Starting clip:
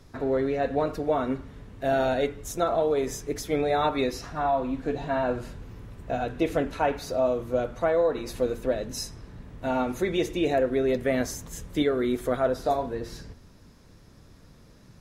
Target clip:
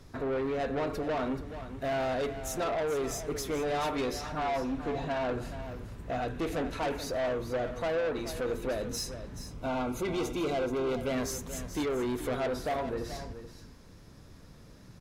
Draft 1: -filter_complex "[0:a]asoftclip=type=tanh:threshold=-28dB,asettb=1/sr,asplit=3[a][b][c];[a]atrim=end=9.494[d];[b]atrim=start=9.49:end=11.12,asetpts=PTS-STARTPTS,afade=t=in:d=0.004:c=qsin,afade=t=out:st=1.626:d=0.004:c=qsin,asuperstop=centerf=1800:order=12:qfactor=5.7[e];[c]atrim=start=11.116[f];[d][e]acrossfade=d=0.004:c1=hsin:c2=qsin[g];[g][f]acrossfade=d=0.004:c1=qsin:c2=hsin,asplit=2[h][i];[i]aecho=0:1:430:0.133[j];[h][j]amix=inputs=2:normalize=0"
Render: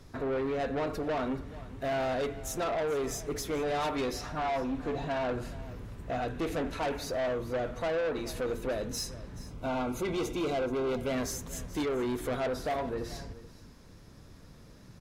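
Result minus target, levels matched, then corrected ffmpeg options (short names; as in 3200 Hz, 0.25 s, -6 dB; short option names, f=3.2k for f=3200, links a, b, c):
echo-to-direct -6 dB
-filter_complex "[0:a]asoftclip=type=tanh:threshold=-28dB,asettb=1/sr,asplit=3[a][b][c];[a]atrim=end=9.494[d];[b]atrim=start=9.49:end=11.12,asetpts=PTS-STARTPTS,afade=t=in:d=0.004:c=qsin,afade=t=out:st=1.626:d=0.004:c=qsin,asuperstop=centerf=1800:order=12:qfactor=5.7[e];[c]atrim=start=11.116[f];[d][e]acrossfade=d=0.004:c1=hsin:c2=qsin[g];[g][f]acrossfade=d=0.004:c1=qsin:c2=hsin,asplit=2[h][i];[i]aecho=0:1:430:0.266[j];[h][j]amix=inputs=2:normalize=0"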